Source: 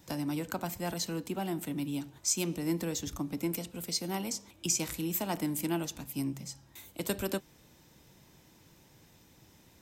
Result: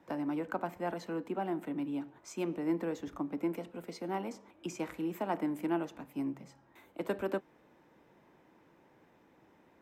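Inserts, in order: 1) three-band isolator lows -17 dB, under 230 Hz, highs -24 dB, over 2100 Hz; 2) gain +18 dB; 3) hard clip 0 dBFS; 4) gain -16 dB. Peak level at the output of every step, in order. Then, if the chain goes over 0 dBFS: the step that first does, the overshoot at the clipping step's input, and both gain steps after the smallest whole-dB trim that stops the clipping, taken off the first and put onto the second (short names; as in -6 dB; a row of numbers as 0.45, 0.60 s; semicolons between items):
-23.0, -5.0, -5.0, -21.0 dBFS; no overload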